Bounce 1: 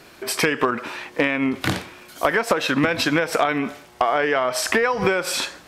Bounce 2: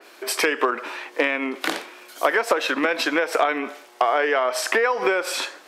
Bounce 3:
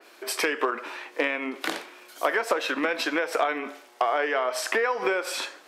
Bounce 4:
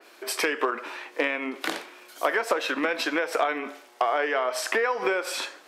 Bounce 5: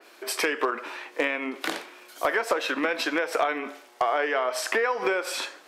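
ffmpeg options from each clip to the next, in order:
ffmpeg -i in.wav -af "highpass=frequency=320:width=0.5412,highpass=frequency=320:width=1.3066,adynamicequalizer=threshold=0.0158:dfrequency=3200:dqfactor=0.7:tfrequency=3200:tqfactor=0.7:attack=5:release=100:ratio=0.375:range=2:mode=cutabove:tftype=highshelf" out.wav
ffmpeg -i in.wav -af "flanger=delay=8.7:depth=1.5:regen=-85:speed=0.58:shape=sinusoidal" out.wav
ffmpeg -i in.wav -af anull out.wav
ffmpeg -i in.wav -af "asoftclip=type=hard:threshold=-13dB" out.wav

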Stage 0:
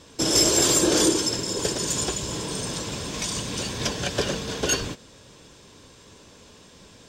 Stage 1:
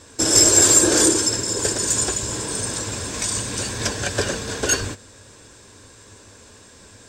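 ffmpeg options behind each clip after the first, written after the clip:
ffmpeg -i in.wav -af "equalizer=frequency=100:width_type=o:width=0.33:gain=8,equalizer=frequency=160:width_type=o:width=0.33:gain=-11,equalizer=frequency=1600:width_type=o:width=0.33:gain=6,equalizer=frequency=3150:width_type=o:width=0.33:gain=-5,equalizer=frequency=8000:width_type=o:width=0.33:gain=10,volume=2dB" out.wav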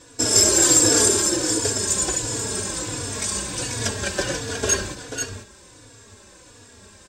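ffmpeg -i in.wav -filter_complex "[0:a]aecho=1:1:488:0.447,asplit=2[link_01][link_02];[link_02]adelay=3.5,afreqshift=-1.4[link_03];[link_01][link_03]amix=inputs=2:normalize=1,volume=1dB" out.wav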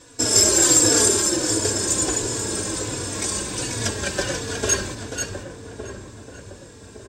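ffmpeg -i in.wav -filter_complex "[0:a]asplit=2[link_01][link_02];[link_02]adelay=1161,lowpass=frequency=800:poles=1,volume=-7.5dB,asplit=2[link_03][link_04];[link_04]adelay=1161,lowpass=frequency=800:poles=1,volume=0.48,asplit=2[link_05][link_06];[link_06]adelay=1161,lowpass=frequency=800:poles=1,volume=0.48,asplit=2[link_07][link_08];[link_08]adelay=1161,lowpass=frequency=800:poles=1,volume=0.48,asplit=2[link_09][link_10];[link_10]adelay=1161,lowpass=frequency=800:poles=1,volume=0.48,asplit=2[link_11][link_12];[link_12]adelay=1161,lowpass=frequency=800:poles=1,volume=0.48[link_13];[link_01][link_03][link_05][link_07][link_09][link_11][link_13]amix=inputs=7:normalize=0" out.wav

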